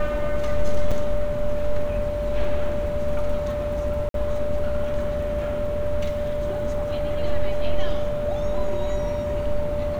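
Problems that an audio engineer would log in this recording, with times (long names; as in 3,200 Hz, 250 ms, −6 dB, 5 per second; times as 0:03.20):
whistle 590 Hz −25 dBFS
0:00.91–0:00.92: drop-out 5.5 ms
0:04.09–0:04.14: drop-out 52 ms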